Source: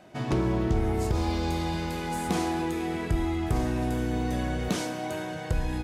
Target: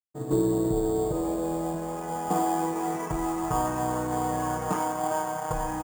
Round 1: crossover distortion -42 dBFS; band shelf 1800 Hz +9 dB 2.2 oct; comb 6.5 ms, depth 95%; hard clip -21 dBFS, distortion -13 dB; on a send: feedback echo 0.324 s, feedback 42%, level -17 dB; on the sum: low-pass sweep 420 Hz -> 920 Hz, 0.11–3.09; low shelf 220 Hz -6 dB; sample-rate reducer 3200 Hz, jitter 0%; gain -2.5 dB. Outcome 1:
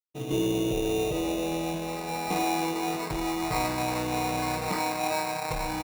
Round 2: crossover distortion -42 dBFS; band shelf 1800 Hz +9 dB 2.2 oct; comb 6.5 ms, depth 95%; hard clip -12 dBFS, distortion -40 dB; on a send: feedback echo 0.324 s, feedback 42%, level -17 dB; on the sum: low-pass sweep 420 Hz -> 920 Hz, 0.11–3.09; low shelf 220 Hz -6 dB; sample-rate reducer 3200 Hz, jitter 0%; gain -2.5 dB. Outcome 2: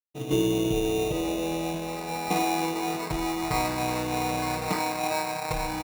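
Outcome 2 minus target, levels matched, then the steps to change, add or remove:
sample-rate reducer: distortion +8 dB
change: sample-rate reducer 8000 Hz, jitter 0%

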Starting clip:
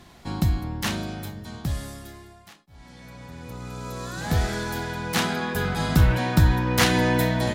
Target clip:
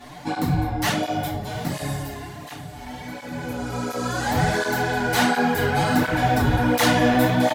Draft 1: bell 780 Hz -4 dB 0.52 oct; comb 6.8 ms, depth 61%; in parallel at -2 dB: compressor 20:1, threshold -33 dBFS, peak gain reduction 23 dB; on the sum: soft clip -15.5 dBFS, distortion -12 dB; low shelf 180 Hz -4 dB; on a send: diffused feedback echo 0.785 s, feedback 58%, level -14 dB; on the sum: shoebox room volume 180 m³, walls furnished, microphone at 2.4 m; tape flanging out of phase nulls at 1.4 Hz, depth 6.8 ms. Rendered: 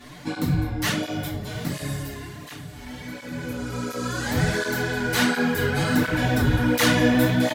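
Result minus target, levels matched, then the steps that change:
1000 Hz band -6.5 dB; compressor: peak gain reduction +5.5 dB
change: bell 780 Hz +8 dB 0.52 oct; change: compressor 20:1, threshold -27 dBFS, peak gain reduction 17.5 dB

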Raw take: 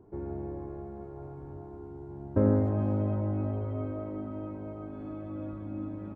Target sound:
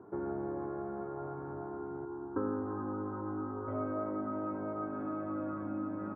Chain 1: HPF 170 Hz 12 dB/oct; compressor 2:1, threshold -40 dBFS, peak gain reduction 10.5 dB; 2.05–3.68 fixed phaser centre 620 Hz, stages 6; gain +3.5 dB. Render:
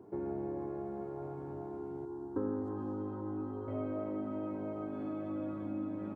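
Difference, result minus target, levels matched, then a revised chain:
1000 Hz band -5.0 dB
HPF 170 Hz 12 dB/oct; compressor 2:1, threshold -40 dBFS, peak gain reduction 10.5 dB; synth low-pass 1400 Hz, resonance Q 3.6; 2.05–3.68 fixed phaser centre 620 Hz, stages 6; gain +3.5 dB

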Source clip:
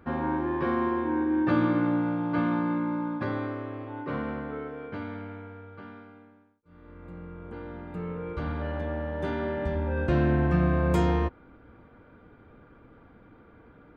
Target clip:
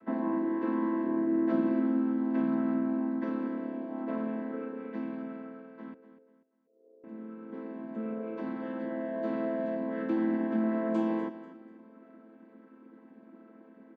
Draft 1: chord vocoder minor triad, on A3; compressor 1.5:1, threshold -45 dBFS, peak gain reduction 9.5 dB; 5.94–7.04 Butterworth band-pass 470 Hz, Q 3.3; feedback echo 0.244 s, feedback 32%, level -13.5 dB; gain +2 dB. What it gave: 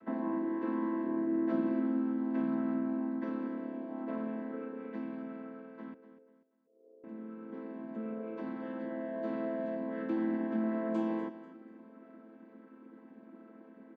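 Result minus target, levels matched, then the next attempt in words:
compressor: peak gain reduction +3.5 dB
chord vocoder minor triad, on A3; compressor 1.5:1, threshold -34 dBFS, peak gain reduction 6 dB; 5.94–7.04 Butterworth band-pass 470 Hz, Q 3.3; feedback echo 0.244 s, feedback 32%, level -13.5 dB; gain +2 dB

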